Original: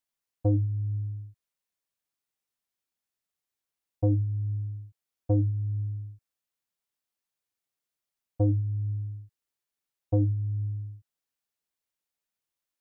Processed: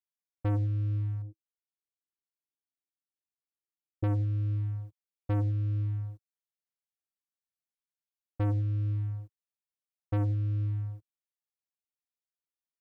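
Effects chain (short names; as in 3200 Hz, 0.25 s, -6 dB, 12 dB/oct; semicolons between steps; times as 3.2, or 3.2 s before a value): sample leveller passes 3; 1.22–4.04 EQ curve 210 Hz 0 dB, 320 Hz +7 dB, 1300 Hz -19 dB; gain -8.5 dB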